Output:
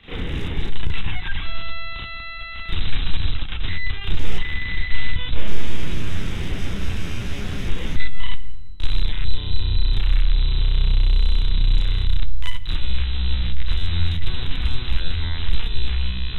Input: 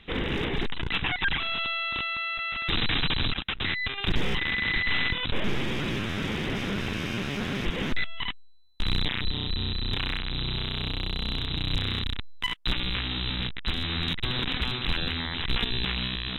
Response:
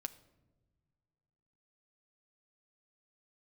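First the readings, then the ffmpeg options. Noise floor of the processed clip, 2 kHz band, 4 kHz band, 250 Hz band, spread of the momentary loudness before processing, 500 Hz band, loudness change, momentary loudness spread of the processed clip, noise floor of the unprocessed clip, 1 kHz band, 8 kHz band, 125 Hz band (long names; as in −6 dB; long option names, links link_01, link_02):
−30 dBFS, −3.5 dB, −2.5 dB, −2.5 dB, 5 LU, −3.5 dB, +2.0 dB, 9 LU, −39 dBFS, −4.0 dB, can't be measured, +7.5 dB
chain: -filter_complex "[0:a]asubboost=boost=2.5:cutoff=66,acrossover=split=140|5200[link_01][link_02][link_03];[link_01]acompressor=threshold=-22dB:ratio=4[link_04];[link_02]acompressor=threshold=-42dB:ratio=4[link_05];[link_03]acompressor=threshold=-53dB:ratio=4[link_06];[link_04][link_05][link_06]amix=inputs=3:normalize=0,asplit=2[link_07][link_08];[1:a]atrim=start_sample=2205,asetrate=24696,aresample=44100,adelay=34[link_09];[link_08][link_09]afir=irnorm=-1:irlink=0,volume=6.5dB[link_10];[link_07][link_10]amix=inputs=2:normalize=0"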